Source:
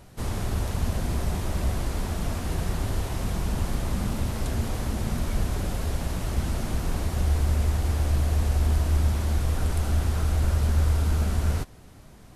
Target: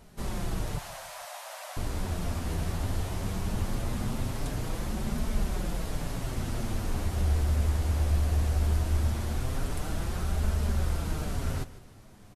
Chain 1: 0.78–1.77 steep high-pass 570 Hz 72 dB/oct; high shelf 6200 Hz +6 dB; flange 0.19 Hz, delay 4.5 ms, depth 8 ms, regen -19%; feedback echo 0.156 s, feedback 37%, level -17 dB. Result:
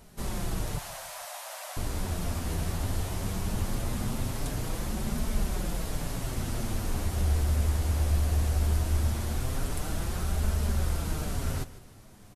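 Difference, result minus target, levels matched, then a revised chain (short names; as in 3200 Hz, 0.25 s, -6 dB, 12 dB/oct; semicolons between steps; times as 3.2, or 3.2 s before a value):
8000 Hz band +3.5 dB
0.78–1.77 steep high-pass 570 Hz 72 dB/oct; flange 0.19 Hz, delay 4.5 ms, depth 8 ms, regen -19%; feedback echo 0.156 s, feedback 37%, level -17 dB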